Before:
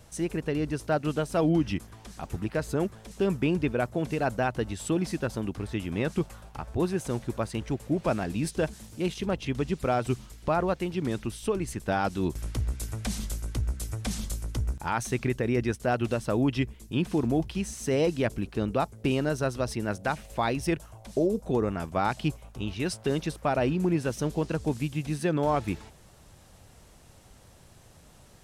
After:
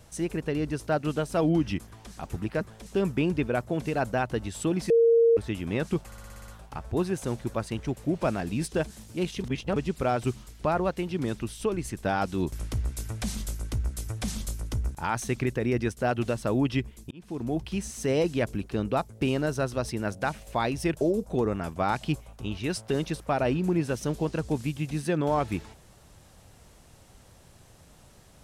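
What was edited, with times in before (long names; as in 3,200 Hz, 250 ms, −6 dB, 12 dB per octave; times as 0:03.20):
0:02.61–0:02.86: remove
0:05.15–0:05.62: beep over 462 Hz −16 dBFS
0:06.31: stutter 0.06 s, 8 plays
0:09.27–0:09.59: reverse
0:16.94–0:17.56: fade in
0:20.84–0:21.17: remove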